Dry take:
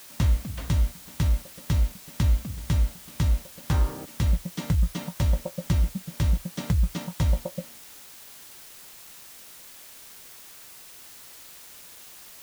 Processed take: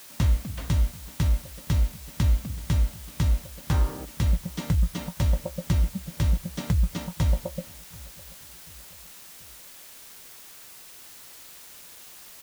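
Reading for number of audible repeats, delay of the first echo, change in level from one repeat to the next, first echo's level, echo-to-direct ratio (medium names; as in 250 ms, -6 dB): 2, 735 ms, -6.0 dB, -23.0 dB, -22.0 dB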